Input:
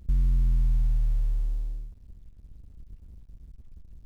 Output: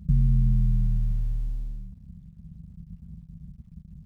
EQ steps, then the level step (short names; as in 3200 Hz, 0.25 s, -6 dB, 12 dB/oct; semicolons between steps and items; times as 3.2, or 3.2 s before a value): HPF 49 Hz; bell 160 Hz +13 dB 0.52 oct; resonant low shelf 260 Hz +6.5 dB, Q 3; -2.5 dB